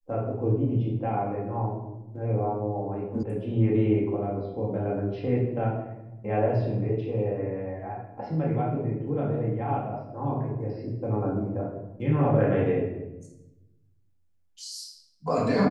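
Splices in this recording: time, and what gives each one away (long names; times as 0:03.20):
0:03.23: cut off before it has died away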